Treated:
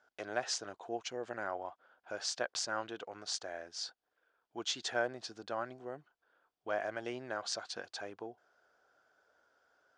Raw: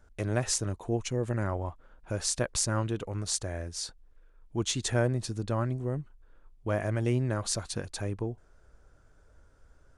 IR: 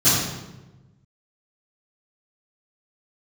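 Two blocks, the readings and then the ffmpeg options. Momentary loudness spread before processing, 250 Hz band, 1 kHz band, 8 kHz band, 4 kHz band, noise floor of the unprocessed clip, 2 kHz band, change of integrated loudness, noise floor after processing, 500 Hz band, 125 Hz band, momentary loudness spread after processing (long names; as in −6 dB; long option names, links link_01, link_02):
9 LU, −14.0 dB, −2.0 dB, −10.0 dB, −3.0 dB, −60 dBFS, −1.0 dB, −8.0 dB, below −85 dBFS, −6.5 dB, −28.5 dB, 11 LU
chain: -af "highpass=420,equalizer=frequency=730:width_type=q:width=4:gain=8,equalizer=frequency=1500:width_type=q:width=4:gain=7,equalizer=frequency=3200:width_type=q:width=4:gain=5,equalizer=frequency=4800:width_type=q:width=4:gain=5,lowpass=frequency=6500:width=0.5412,lowpass=frequency=6500:width=1.3066,volume=-6.5dB"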